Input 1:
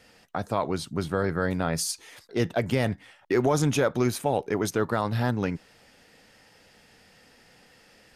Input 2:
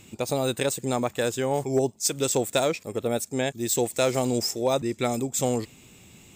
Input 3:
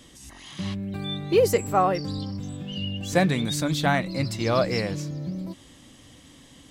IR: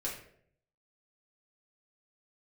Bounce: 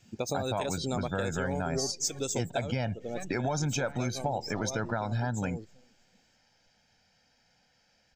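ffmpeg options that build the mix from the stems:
-filter_complex "[0:a]aecho=1:1:1.3:0.61,volume=2dB[a];[1:a]highshelf=f=11k:g=7.5,volume=-1dB,afade=t=out:st=2.07:d=0.65:silence=0.354813,asplit=2[b][c];[c]volume=-21dB[d];[2:a]highshelf=f=2.3k:g=7.5,aeval=exprs='max(val(0),0)':c=same,volume=-16dB,asplit=2[e][f];[f]volume=-9dB[g];[d][g]amix=inputs=2:normalize=0,aecho=0:1:321|642|963|1284|1605|1926:1|0.4|0.16|0.064|0.0256|0.0102[h];[a][b][e][h]amix=inputs=4:normalize=0,afftdn=nr=16:nf=-37,highshelf=f=7.8k:t=q:w=3:g=-7.5,acompressor=threshold=-29dB:ratio=4"

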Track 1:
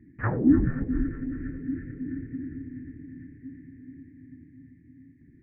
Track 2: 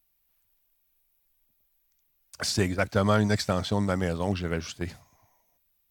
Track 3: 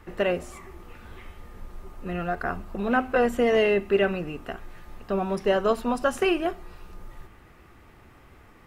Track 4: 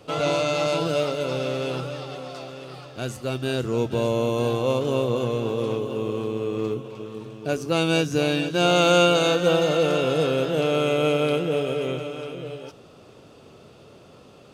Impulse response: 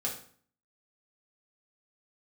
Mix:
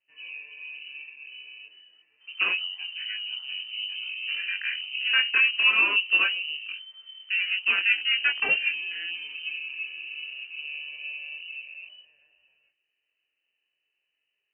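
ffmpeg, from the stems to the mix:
-filter_complex "[0:a]adelay=2350,volume=-18dB[a];[1:a]equalizer=f=410:t=o:w=0.21:g=-13,volume=-9.5dB,asplit=2[b][c];[c]volume=-11.5dB[d];[2:a]adelay=2200,volume=2dB,asplit=2[e][f];[f]volume=-20.5dB[g];[3:a]volume=-12.5dB,asplit=2[h][i];[i]volume=-20dB[j];[4:a]atrim=start_sample=2205[k];[d][g][j]amix=inputs=3:normalize=0[l];[l][k]afir=irnorm=-1:irlink=0[m];[a][b][e][h][m]amix=inputs=5:normalize=0,afwtdn=0.0447,flanger=delay=19.5:depth=3.6:speed=0.48,lowpass=f=2.6k:t=q:w=0.5098,lowpass=f=2.6k:t=q:w=0.6013,lowpass=f=2.6k:t=q:w=0.9,lowpass=f=2.6k:t=q:w=2.563,afreqshift=-3100"

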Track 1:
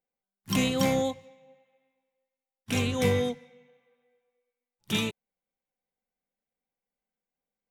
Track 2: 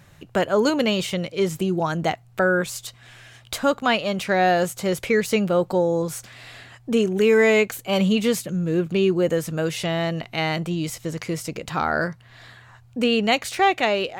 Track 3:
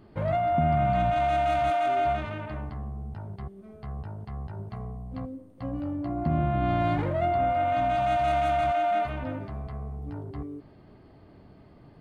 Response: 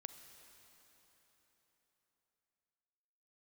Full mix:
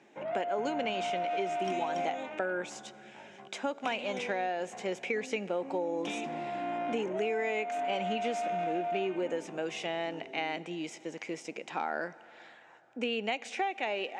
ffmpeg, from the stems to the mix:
-filter_complex "[0:a]acompressor=threshold=-29dB:ratio=6,adelay=1150,volume=-6dB[a];[1:a]volume=-11.5dB,asplit=2[b][c];[c]volume=-4.5dB[d];[2:a]asoftclip=type=tanh:threshold=-21dB,volume=-6.5dB[e];[3:a]atrim=start_sample=2205[f];[d][f]afir=irnorm=-1:irlink=0[g];[a][b][e][g]amix=inputs=4:normalize=0,highpass=f=240:w=0.5412,highpass=f=240:w=1.3066,equalizer=f=830:t=q:w=4:g=6,equalizer=f=1.2k:t=q:w=4:g=-6,equalizer=f=2.4k:t=q:w=4:g=6,equalizer=f=4.4k:t=q:w=4:g=-9,lowpass=f=6.9k:w=0.5412,lowpass=f=6.9k:w=1.3066,acompressor=threshold=-28dB:ratio=10"

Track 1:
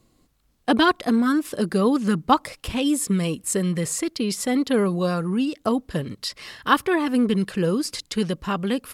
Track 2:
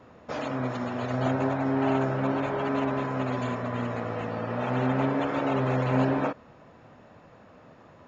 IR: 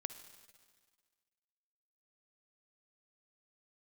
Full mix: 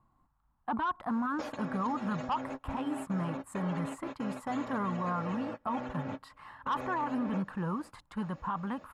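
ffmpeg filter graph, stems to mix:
-filter_complex "[0:a]firequalizer=gain_entry='entry(130,0);entry(460,-14);entry(890,12);entry(2200,-11);entry(5500,-27);entry(7800,-19)':delay=0.05:min_phase=1,asoftclip=type=tanh:threshold=-6.5dB,volume=-7.5dB,asplit=2[a][b];[1:a]bass=f=250:g=-3,treble=f=4k:g=6,aecho=1:1:3.6:0.51,acompressor=threshold=-33dB:ratio=6,adelay=1100,volume=-3.5dB[c];[b]apad=whole_len=404758[d];[c][d]sidechaingate=range=-33dB:threshold=-44dB:ratio=16:detection=peak[e];[a][e]amix=inputs=2:normalize=0,alimiter=level_in=1dB:limit=-24dB:level=0:latency=1:release=20,volume=-1dB"

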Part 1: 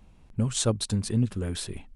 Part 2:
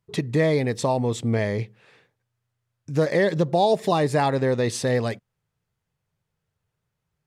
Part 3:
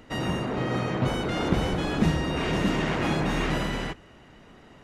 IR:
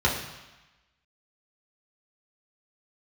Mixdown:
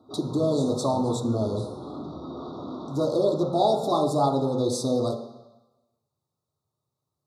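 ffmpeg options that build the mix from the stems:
-filter_complex "[0:a]volume=-18.5dB,asplit=2[a][b];[b]volume=-5.5dB[c];[1:a]acontrast=72,volume=-7.5dB,asplit=3[d][e][f];[e]volume=-16.5dB[g];[2:a]asoftclip=type=tanh:threshold=-26.5dB,lowpass=f=3.9k:w=0.5412,lowpass=f=3.9k:w=1.3066,volume=-4.5dB,asplit=2[h][i];[i]volume=-17dB[j];[f]apad=whole_len=213061[k];[h][k]sidechaincompress=threshold=-36dB:ratio=8:attack=16:release=390[l];[3:a]atrim=start_sample=2205[m];[c][g][j]amix=inputs=3:normalize=0[n];[n][m]afir=irnorm=-1:irlink=0[o];[a][d][l][o]amix=inputs=4:normalize=0,highpass=210,asuperstop=centerf=2200:order=20:qfactor=0.96"

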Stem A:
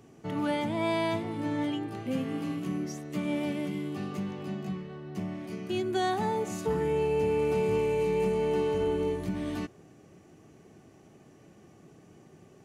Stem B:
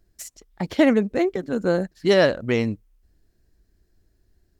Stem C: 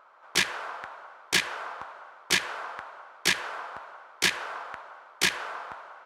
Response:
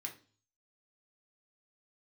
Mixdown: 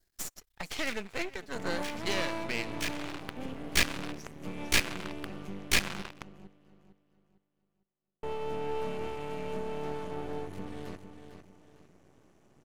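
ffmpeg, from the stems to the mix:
-filter_complex "[0:a]adelay=1300,volume=-4.5dB,asplit=3[a][b][c];[a]atrim=end=6.02,asetpts=PTS-STARTPTS,afade=t=out:st=6.016:d=0.004:c=hsin[d];[b]atrim=start=6.02:end=8.23,asetpts=PTS-STARTPTS,volume=0[e];[c]atrim=start=8.23,asetpts=PTS-STARTPTS,afade=t=in:d=0.004:c=hsin[f];[d][e][f]concat=n=3:v=0:a=1,asplit=2[g][h];[h]volume=-9dB[i];[1:a]tiltshelf=f=710:g=-9,alimiter=limit=-14dB:level=0:latency=1:release=356,volume=-5dB,asplit=3[j][k][l];[k]volume=-21dB[m];[2:a]acrusher=bits=4:mix=0:aa=0.5,adelay=500,volume=1dB,asplit=2[n][o];[o]volume=-23dB[p];[l]apad=whole_len=289203[q];[n][q]sidechaincompress=threshold=-49dB:ratio=12:attack=39:release=364[r];[3:a]atrim=start_sample=2205[s];[p][s]afir=irnorm=-1:irlink=0[t];[i][m]amix=inputs=2:normalize=0,aecho=0:1:453|906|1359|1812|2265:1|0.35|0.122|0.0429|0.015[u];[g][j][r][t][u]amix=inputs=5:normalize=0,adynamicequalizer=threshold=0.00398:dfrequency=2500:dqfactor=4.6:tfrequency=2500:tqfactor=4.6:attack=5:release=100:ratio=0.375:range=3:mode=boostabove:tftype=bell,aeval=exprs='max(val(0),0)':c=same"

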